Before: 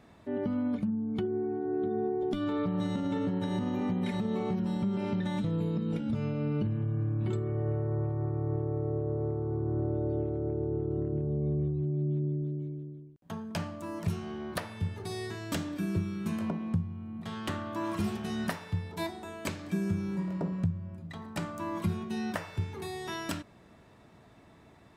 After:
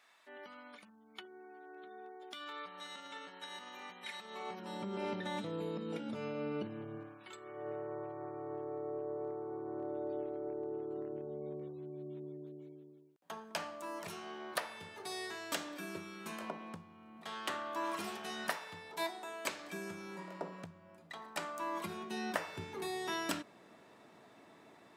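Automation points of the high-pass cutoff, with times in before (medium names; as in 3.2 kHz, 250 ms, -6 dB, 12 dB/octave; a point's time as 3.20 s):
4.19 s 1.4 kHz
4.88 s 400 Hz
6.95 s 400 Hz
7.28 s 1.4 kHz
7.70 s 550 Hz
21.65 s 550 Hz
22.58 s 270 Hz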